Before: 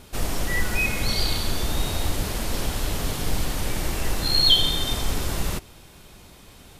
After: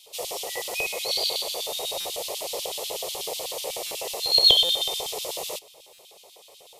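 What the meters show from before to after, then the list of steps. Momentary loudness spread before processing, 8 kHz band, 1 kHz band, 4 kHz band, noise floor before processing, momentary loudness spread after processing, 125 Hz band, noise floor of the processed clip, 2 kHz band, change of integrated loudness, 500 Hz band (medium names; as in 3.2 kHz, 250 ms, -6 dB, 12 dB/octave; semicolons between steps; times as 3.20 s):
11 LU, +0.5 dB, -2.5 dB, +1.5 dB, -48 dBFS, 14 LU, under -20 dB, -52 dBFS, -7.0 dB, 0.0 dB, +1.5 dB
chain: LFO high-pass square 8.1 Hz 470–3200 Hz; static phaser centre 640 Hz, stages 4; buffer glitch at 2.00/3.86/4.64/5.93 s, samples 256, times 8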